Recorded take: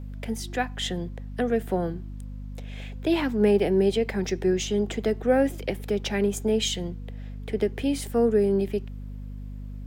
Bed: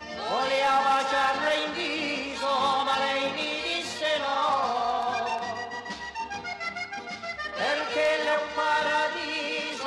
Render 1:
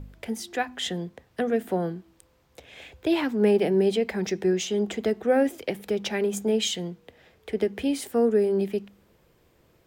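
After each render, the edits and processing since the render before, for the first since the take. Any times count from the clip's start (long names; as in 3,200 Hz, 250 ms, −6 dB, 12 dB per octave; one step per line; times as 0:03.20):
hum removal 50 Hz, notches 5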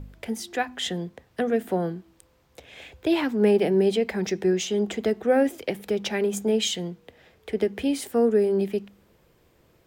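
level +1 dB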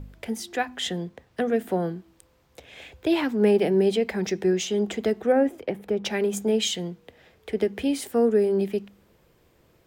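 0:00.95–0:01.50: running median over 3 samples
0:05.32–0:06.05: drawn EQ curve 830 Hz 0 dB, 1,800 Hz −4 dB, 4,500 Hz −12 dB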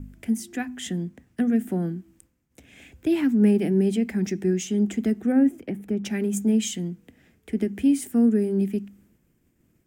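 downward expander −55 dBFS
octave-band graphic EQ 250/500/1,000/4,000/8,000 Hz +10/−11/−9/−11/+4 dB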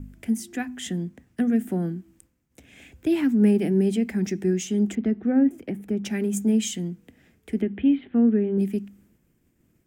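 0:04.95–0:05.51: high-frequency loss of the air 290 metres
0:07.61–0:08.58: Butterworth low-pass 3,600 Hz 72 dB per octave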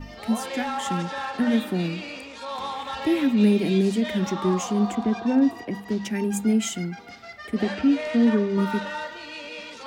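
mix in bed −7 dB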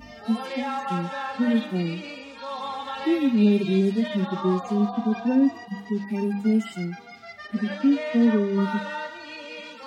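harmonic-percussive split with one part muted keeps harmonic
high-pass filter 80 Hz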